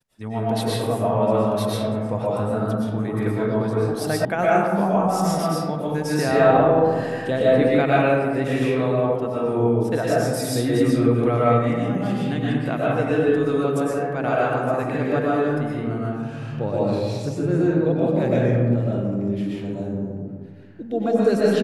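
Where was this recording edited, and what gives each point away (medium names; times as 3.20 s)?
4.25 s: sound stops dead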